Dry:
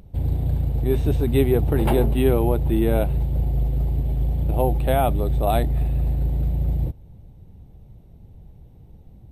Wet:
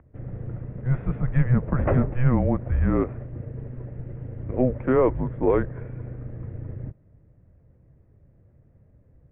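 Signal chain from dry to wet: dynamic EQ 1300 Hz, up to +5 dB, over -39 dBFS, Q 0.8; mistuned SSB -260 Hz 160–2200 Hz

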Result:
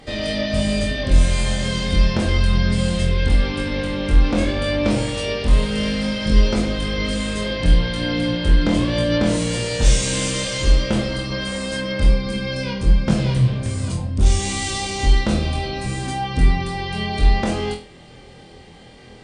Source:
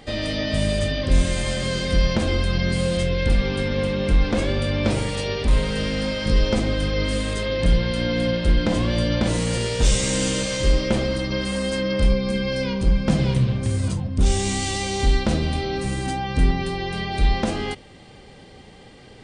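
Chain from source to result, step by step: flutter echo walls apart 4.1 m, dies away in 0.32 s; Opus 96 kbps 48000 Hz

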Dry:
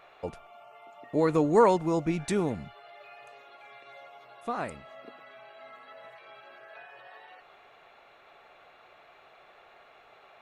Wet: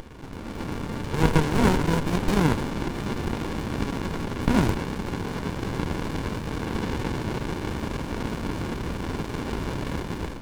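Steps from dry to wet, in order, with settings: per-bin compression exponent 0.4; Chebyshev high-pass 1600 Hz, order 2; AGC gain up to 16 dB; on a send at -9 dB: reverb RT60 1.0 s, pre-delay 63 ms; on the sum: running maximum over 65 samples

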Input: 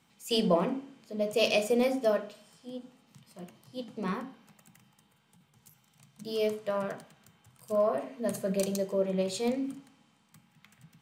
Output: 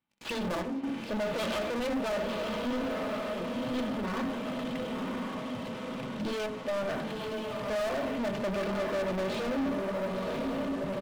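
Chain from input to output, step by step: self-modulated delay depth 0.51 ms; step gate ".xx.xxxxxxxxxxx." 72 bpm -12 dB; compressor 2.5:1, threshold -43 dBFS, peak gain reduction 14.5 dB; limiter -33.5 dBFS, peak gain reduction 7 dB; LPF 3600 Hz 24 dB/oct; diffused feedback echo 1.003 s, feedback 58%, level -7 dB; sample leveller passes 5; comb 3.4 ms, depth 31%; gain +2.5 dB

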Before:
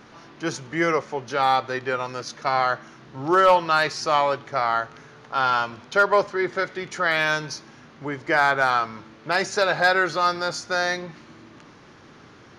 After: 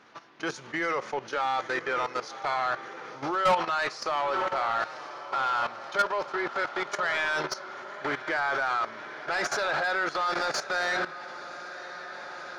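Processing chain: diffused feedback echo 1.057 s, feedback 63%, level -12.5 dB; level quantiser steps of 15 dB; overdrive pedal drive 20 dB, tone 3900 Hz, clips at -8 dBFS; gain -7.5 dB

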